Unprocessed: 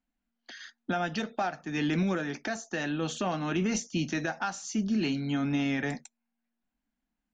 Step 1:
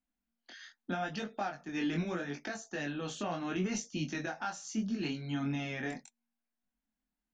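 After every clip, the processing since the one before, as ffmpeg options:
ffmpeg -i in.wav -af "flanger=delay=19.5:depth=4.5:speed=0.77,volume=-2.5dB" out.wav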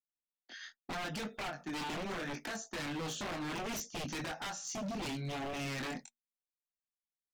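ffmpeg -i in.wav -filter_complex "[0:a]agate=range=-33dB:threshold=-48dB:ratio=3:detection=peak,asplit=2[link_01][link_02];[link_02]alimiter=level_in=9.5dB:limit=-24dB:level=0:latency=1:release=400,volume=-9.5dB,volume=-0.5dB[link_03];[link_01][link_03]amix=inputs=2:normalize=0,aeval=exprs='0.0224*(abs(mod(val(0)/0.0224+3,4)-2)-1)':channel_layout=same,volume=-1dB" out.wav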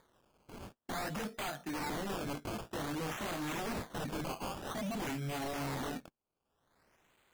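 ffmpeg -i in.wav -af "acompressor=mode=upward:threshold=-51dB:ratio=2.5,acrusher=samples=16:mix=1:aa=0.000001:lfo=1:lforange=16:lforate=0.52,volume=1dB" out.wav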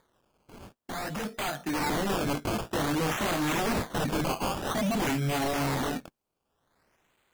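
ffmpeg -i in.wav -af "dynaudnorm=framelen=210:gausssize=13:maxgain=10dB" out.wav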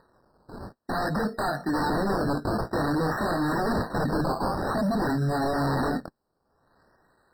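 ffmpeg -i in.wav -af "highshelf=frequency=5900:gain=-11,alimiter=level_in=4.5dB:limit=-24dB:level=0:latency=1:release=31,volume=-4.5dB,afftfilt=real='re*eq(mod(floor(b*sr/1024/1900),2),0)':imag='im*eq(mod(floor(b*sr/1024/1900),2),0)':win_size=1024:overlap=0.75,volume=8dB" out.wav

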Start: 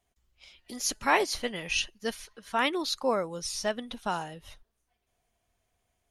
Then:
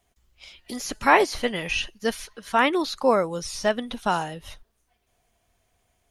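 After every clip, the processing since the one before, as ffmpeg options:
ffmpeg -i in.wav -filter_complex "[0:a]acrossover=split=2500[link_01][link_02];[link_02]acompressor=threshold=-39dB:ratio=4:attack=1:release=60[link_03];[link_01][link_03]amix=inputs=2:normalize=0,volume=7.5dB" out.wav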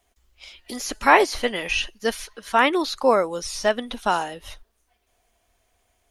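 ffmpeg -i in.wav -af "equalizer=frequency=140:width=1.9:gain=-14.5,volume=2.5dB" out.wav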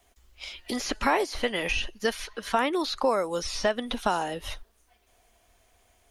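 ffmpeg -i in.wav -filter_complex "[0:a]acrossover=split=740|4700[link_01][link_02][link_03];[link_01]acompressor=threshold=-31dB:ratio=4[link_04];[link_02]acompressor=threshold=-33dB:ratio=4[link_05];[link_03]acompressor=threshold=-49dB:ratio=4[link_06];[link_04][link_05][link_06]amix=inputs=3:normalize=0,volume=4dB" out.wav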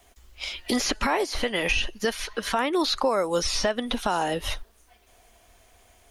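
ffmpeg -i in.wav -af "alimiter=limit=-20dB:level=0:latency=1:release=256,volume=6.5dB" out.wav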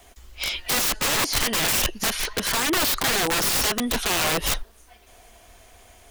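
ffmpeg -i in.wav -af "aeval=exprs='(mod(15*val(0)+1,2)-1)/15':channel_layout=same,volume=6.5dB" out.wav

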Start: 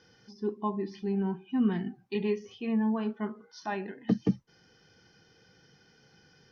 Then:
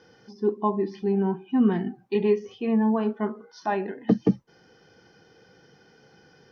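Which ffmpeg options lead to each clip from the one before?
ffmpeg -i in.wav -af "equalizer=frequency=550:width=0.41:gain=9.5" out.wav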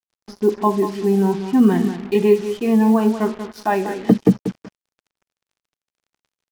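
ffmpeg -i in.wav -af "aecho=1:1:188|376:0.299|0.0508,acrusher=bits=6:mix=0:aa=0.5,volume=7dB" out.wav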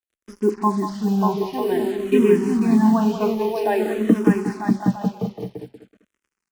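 ffmpeg -i in.wav -filter_complex "[0:a]asplit=2[link_01][link_02];[link_02]aecho=0:1:590|944|1156|1284|1360:0.631|0.398|0.251|0.158|0.1[link_03];[link_01][link_03]amix=inputs=2:normalize=0,asplit=2[link_04][link_05];[link_05]afreqshift=-0.51[link_06];[link_04][link_06]amix=inputs=2:normalize=1" out.wav

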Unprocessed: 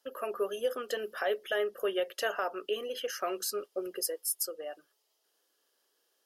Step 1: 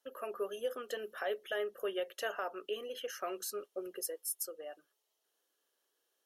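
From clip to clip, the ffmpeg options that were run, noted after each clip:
ffmpeg -i in.wav -af "bandreject=frequency=4900:width=7.3,volume=-5.5dB" out.wav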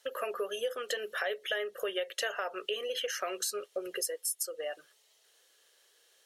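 ffmpeg -i in.wav -af "equalizer=frequency=125:width_type=o:width=1:gain=7,equalizer=frequency=250:width_type=o:width=1:gain=-8,equalizer=frequency=500:width_type=o:width=1:gain=7,equalizer=frequency=2000:width_type=o:width=1:gain=10,equalizer=frequency=4000:width_type=o:width=1:gain=8,equalizer=frequency=8000:width_type=o:width=1:gain=9,acompressor=threshold=-41dB:ratio=3,volume=7dB" out.wav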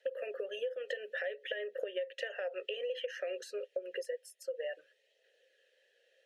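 ffmpeg -i in.wav -filter_complex "[0:a]asplit=3[link_01][link_02][link_03];[link_01]bandpass=frequency=530:width_type=q:width=8,volume=0dB[link_04];[link_02]bandpass=frequency=1840:width_type=q:width=8,volume=-6dB[link_05];[link_03]bandpass=frequency=2480:width_type=q:width=8,volume=-9dB[link_06];[link_04][link_05][link_06]amix=inputs=3:normalize=0,aphaser=in_gain=1:out_gain=1:delay=1.6:decay=0.22:speed=0.57:type=triangular,acompressor=threshold=-43dB:ratio=6,volume=9dB" out.wav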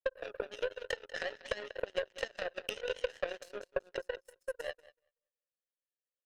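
ffmpeg -i in.wav -filter_complex "[0:a]asplit=2[link_01][link_02];[link_02]aecho=0:1:190|380|570|760:0.422|0.164|0.0641|0.025[link_03];[link_01][link_03]amix=inputs=2:normalize=0,aeval=exprs='0.0841*(cos(1*acos(clip(val(0)/0.0841,-1,1)))-cos(1*PI/2))+0.0299*(cos(2*acos(clip(val(0)/0.0841,-1,1)))-cos(2*PI/2))+0.00376*(cos(4*acos(clip(val(0)/0.0841,-1,1)))-cos(4*PI/2))+0.0119*(cos(7*acos(clip(val(0)/0.0841,-1,1)))-cos(7*PI/2))+0.000531*(cos(8*acos(clip(val(0)/0.0841,-1,1)))-cos(8*PI/2))':channel_layout=same,volume=3dB" out.wav

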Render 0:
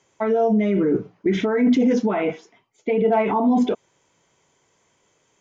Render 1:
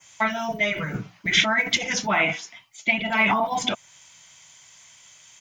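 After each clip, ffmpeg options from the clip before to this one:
ffmpeg -i in.wav -af "adynamicequalizer=threshold=0.00398:dfrequency=4000:dqfactor=1:tfrequency=4000:tqfactor=1:attack=5:release=100:ratio=0.375:range=3:mode=cutabove:tftype=bell,afftfilt=real='re*lt(hypot(re,im),0.708)':imag='im*lt(hypot(re,im),0.708)':win_size=1024:overlap=0.75,firequalizer=gain_entry='entry(130,0);entry(430,-17);entry(620,-2);entry(2100,10);entry(3500,14)':delay=0.05:min_phase=1,volume=4dB" out.wav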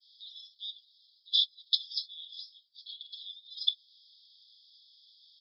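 ffmpeg -i in.wav -af "asuperpass=centerf=4200:order=20:qfactor=2.2" out.wav

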